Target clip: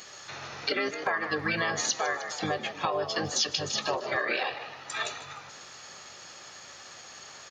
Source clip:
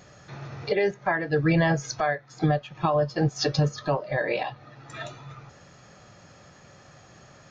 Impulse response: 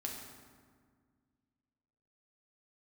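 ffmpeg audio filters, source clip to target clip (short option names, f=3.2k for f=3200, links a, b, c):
-filter_complex "[0:a]asplit=2[a][b];[1:a]atrim=start_sample=2205[c];[b][c]afir=irnorm=-1:irlink=0,volume=-15.5dB[d];[a][d]amix=inputs=2:normalize=0,aeval=exprs='val(0)+0.00178*(sin(2*PI*50*n/s)+sin(2*PI*2*50*n/s)/2+sin(2*PI*3*50*n/s)/3+sin(2*PI*4*50*n/s)/4+sin(2*PI*5*50*n/s)/5)':c=same,asplit=5[e][f][g][h][i];[f]adelay=153,afreqshift=67,volume=-15dB[j];[g]adelay=306,afreqshift=134,volume=-22.7dB[k];[h]adelay=459,afreqshift=201,volume=-30.5dB[l];[i]adelay=612,afreqshift=268,volume=-38.2dB[m];[e][j][k][l][m]amix=inputs=5:normalize=0,asplit=2[n][o];[o]alimiter=limit=-17.5dB:level=0:latency=1:release=18,volume=-2dB[p];[n][p]amix=inputs=2:normalize=0,highpass=f=1.4k:p=1,highshelf=f=3.9k:g=7.5,asplit=2[q][r];[r]asetrate=29433,aresample=44100,atempo=1.49831,volume=-5dB[s];[q][s]amix=inputs=2:normalize=0,acompressor=threshold=-25dB:ratio=6"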